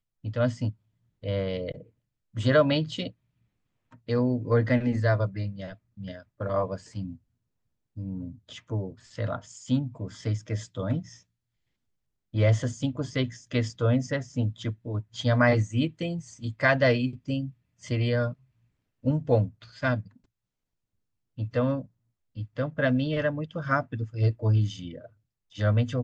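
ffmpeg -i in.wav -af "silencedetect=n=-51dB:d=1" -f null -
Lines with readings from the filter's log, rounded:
silence_start: 11.21
silence_end: 12.33 | silence_duration: 1.12
silence_start: 20.17
silence_end: 21.37 | silence_duration: 1.20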